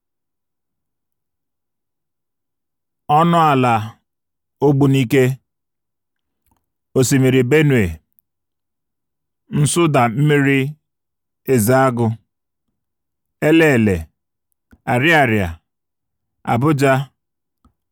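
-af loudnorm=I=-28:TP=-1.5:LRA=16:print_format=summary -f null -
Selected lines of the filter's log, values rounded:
Input Integrated:    -15.6 LUFS
Input True Peak:      -2.4 dBTP
Input LRA:             2.1 LU
Input Threshold:     -26.7 LUFS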